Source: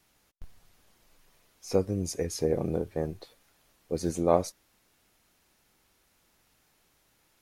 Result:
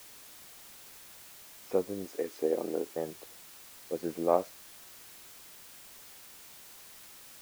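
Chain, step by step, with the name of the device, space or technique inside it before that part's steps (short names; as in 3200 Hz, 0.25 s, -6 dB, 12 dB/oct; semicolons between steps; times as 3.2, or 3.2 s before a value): wax cylinder (BPF 290–2100 Hz; wow and flutter; white noise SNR 14 dB); 2.05–2.96 resonant low shelf 200 Hz -7 dB, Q 1.5; gain -2 dB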